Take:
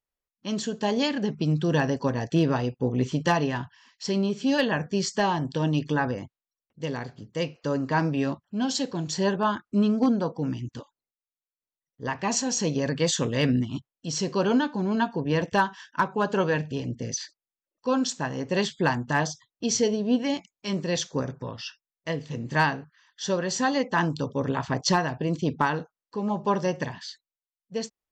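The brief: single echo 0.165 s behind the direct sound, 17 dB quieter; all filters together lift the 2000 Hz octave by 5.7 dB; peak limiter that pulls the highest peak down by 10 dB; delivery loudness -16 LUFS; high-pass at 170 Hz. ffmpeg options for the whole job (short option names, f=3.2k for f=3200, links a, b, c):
-af "highpass=170,equalizer=f=2k:t=o:g=7.5,alimiter=limit=-16dB:level=0:latency=1,aecho=1:1:165:0.141,volume=12.5dB"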